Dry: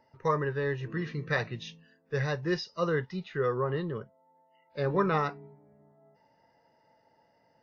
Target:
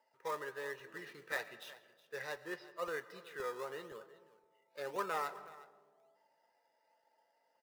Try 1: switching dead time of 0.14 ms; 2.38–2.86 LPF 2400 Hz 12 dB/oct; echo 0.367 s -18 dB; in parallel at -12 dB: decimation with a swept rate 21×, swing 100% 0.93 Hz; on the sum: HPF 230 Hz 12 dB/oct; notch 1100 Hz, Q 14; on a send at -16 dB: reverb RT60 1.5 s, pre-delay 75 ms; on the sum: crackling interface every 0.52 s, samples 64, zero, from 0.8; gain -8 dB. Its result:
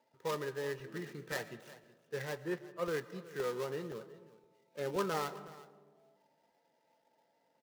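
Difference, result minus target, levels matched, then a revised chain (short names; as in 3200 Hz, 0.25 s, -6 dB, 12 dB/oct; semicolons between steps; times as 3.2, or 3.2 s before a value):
switching dead time: distortion +12 dB; 250 Hz band +7.0 dB
switching dead time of 0.041 ms; 2.38–2.86 LPF 2400 Hz 12 dB/oct; echo 0.367 s -18 dB; in parallel at -12 dB: decimation with a swept rate 21×, swing 100% 0.93 Hz; on the sum: HPF 600 Hz 12 dB/oct; notch 1100 Hz, Q 14; on a send at -16 dB: reverb RT60 1.5 s, pre-delay 75 ms; on the sum: crackling interface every 0.52 s, samples 64, zero, from 0.8; gain -8 dB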